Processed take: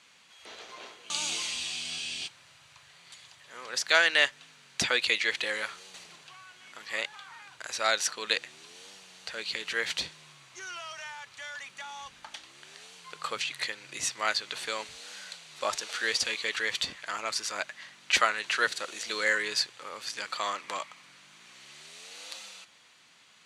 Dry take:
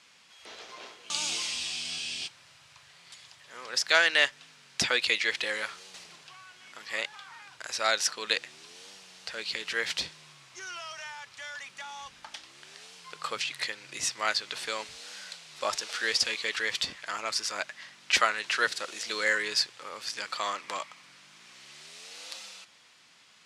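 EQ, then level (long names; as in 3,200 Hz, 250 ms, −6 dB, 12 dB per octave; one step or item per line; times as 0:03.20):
notch filter 5,200 Hz, Q 9.2
0.0 dB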